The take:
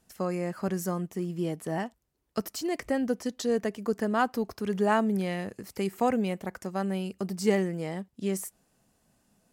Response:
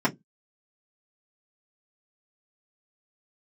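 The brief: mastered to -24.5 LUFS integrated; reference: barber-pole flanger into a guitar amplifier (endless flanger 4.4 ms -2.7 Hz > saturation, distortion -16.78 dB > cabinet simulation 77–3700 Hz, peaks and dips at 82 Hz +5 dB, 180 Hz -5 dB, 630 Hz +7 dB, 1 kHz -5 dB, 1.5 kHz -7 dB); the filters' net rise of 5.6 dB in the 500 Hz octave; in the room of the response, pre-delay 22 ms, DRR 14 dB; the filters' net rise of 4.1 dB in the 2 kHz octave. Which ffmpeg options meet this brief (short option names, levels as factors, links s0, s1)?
-filter_complex "[0:a]equalizer=f=500:t=o:g=4,equalizer=f=2000:t=o:g=8.5,asplit=2[s0][s1];[1:a]atrim=start_sample=2205,adelay=22[s2];[s1][s2]afir=irnorm=-1:irlink=0,volume=0.0422[s3];[s0][s3]amix=inputs=2:normalize=0,asplit=2[s4][s5];[s5]adelay=4.4,afreqshift=-2.7[s6];[s4][s6]amix=inputs=2:normalize=1,asoftclip=threshold=0.119,highpass=77,equalizer=f=82:t=q:w=4:g=5,equalizer=f=180:t=q:w=4:g=-5,equalizer=f=630:t=q:w=4:g=7,equalizer=f=1000:t=q:w=4:g=-5,equalizer=f=1500:t=q:w=4:g=-7,lowpass=f=3700:w=0.5412,lowpass=f=3700:w=1.3066,volume=2.24"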